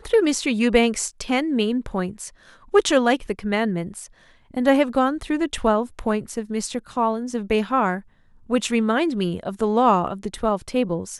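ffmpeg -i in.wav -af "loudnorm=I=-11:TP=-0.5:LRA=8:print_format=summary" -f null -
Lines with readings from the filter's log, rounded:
Input Integrated:    -22.1 LUFS
Input True Peak:      -3.6 dBTP
Input LRA:             1.3 LU
Input Threshold:     -32.5 LUFS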